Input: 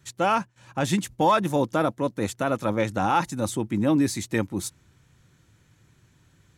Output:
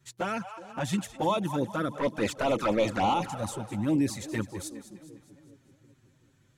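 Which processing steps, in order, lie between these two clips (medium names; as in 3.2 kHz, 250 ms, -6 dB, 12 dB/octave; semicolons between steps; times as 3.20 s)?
1.91–3.14 s: overdrive pedal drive 23 dB, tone 2.2 kHz, clips at -11 dBFS; two-band feedback delay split 570 Hz, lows 375 ms, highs 205 ms, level -14 dB; touch-sensitive flanger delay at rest 8.2 ms, full sweep at -16 dBFS; trim -3.5 dB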